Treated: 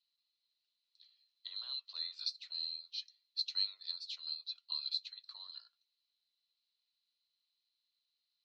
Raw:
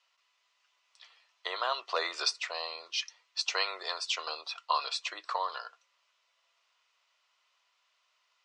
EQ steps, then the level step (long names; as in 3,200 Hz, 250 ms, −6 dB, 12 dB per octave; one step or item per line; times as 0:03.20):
resonant band-pass 4,100 Hz, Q 18
+3.0 dB